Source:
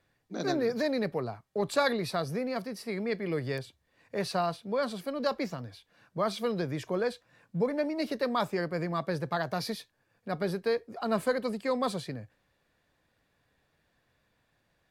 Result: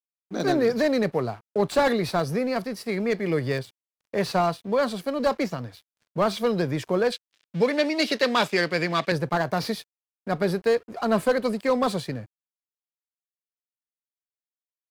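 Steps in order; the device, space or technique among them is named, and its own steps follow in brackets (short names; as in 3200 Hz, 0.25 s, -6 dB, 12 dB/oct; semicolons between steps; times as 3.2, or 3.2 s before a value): early transistor amplifier (crossover distortion -55 dBFS; slew limiter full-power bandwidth 57 Hz); 7.12–9.12 weighting filter D; gain +7.5 dB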